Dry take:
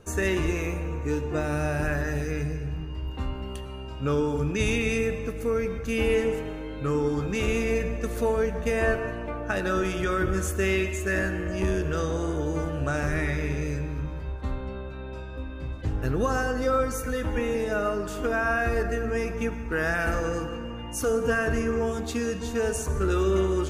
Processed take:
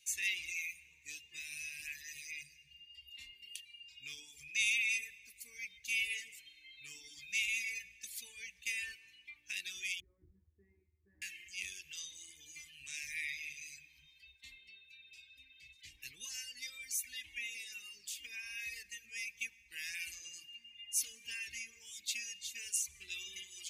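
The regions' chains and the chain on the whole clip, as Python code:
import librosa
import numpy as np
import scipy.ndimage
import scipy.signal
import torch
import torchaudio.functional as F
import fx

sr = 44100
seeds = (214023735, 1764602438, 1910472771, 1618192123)

y = fx.chain(x, sr, fx.cheby2_lowpass(hz=2700.0, order=4, stop_db=60),
    fx.peak_eq(hz=89.0, db=9.0, octaves=0.55),
    fx.room_flutter(wall_m=3.4, rt60_s=0.2), at=(10.0, 11.22))
y = scipy.signal.sosfilt(scipy.signal.ellip(4, 1.0, 40, 2200.0, 'highpass', fs=sr, output='sos'), y)
y = fx.dereverb_blind(y, sr, rt60_s=1.7)
y = y * 10.0 ** (1.0 / 20.0)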